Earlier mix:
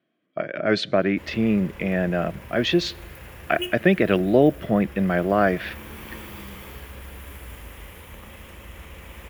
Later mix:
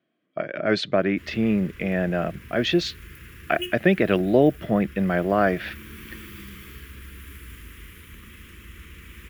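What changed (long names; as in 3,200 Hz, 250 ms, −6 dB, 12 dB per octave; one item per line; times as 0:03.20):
background: add Chebyshev band-stop filter 350–1,400 Hz, order 2
reverb: off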